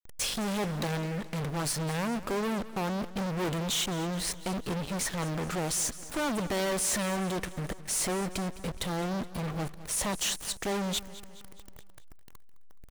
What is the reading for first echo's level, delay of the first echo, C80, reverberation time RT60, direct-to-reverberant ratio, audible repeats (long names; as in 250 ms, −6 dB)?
−16.5 dB, 211 ms, no reverb audible, no reverb audible, no reverb audible, 4